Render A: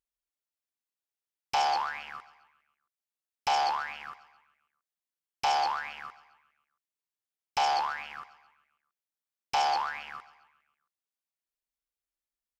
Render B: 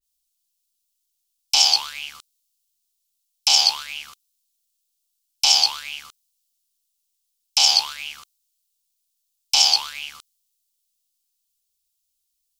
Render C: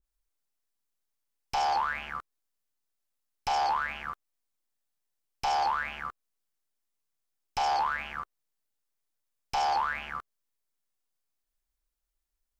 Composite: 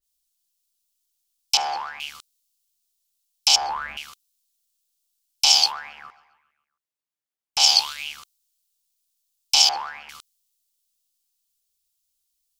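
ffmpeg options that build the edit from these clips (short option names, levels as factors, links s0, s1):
-filter_complex "[0:a]asplit=3[s0][s1][s2];[1:a]asplit=5[s3][s4][s5][s6][s7];[s3]atrim=end=1.572[s8];[s0]atrim=start=1.568:end=2.002[s9];[s4]atrim=start=1.998:end=3.562[s10];[2:a]atrim=start=3.558:end=3.972[s11];[s5]atrim=start=3.968:end=5.73[s12];[s1]atrim=start=5.63:end=7.63[s13];[s6]atrim=start=7.53:end=9.692[s14];[s2]atrim=start=9.688:end=10.092[s15];[s7]atrim=start=10.088[s16];[s8][s9]acrossfade=d=0.004:c1=hsin:c2=hsin[s17];[s17][s10]acrossfade=d=0.004:c1=hsin:c2=hsin[s18];[s18][s11]acrossfade=d=0.004:c1=hsin:c2=hsin[s19];[s19][s12]acrossfade=d=0.004:c1=hsin:c2=hsin[s20];[s20][s13]acrossfade=d=0.1:c1=tri:c2=tri[s21];[s21][s14]acrossfade=d=0.1:c1=tri:c2=tri[s22];[s22][s15]acrossfade=d=0.004:c1=hsin:c2=hsin[s23];[s23][s16]acrossfade=d=0.004:c1=hsin:c2=hsin"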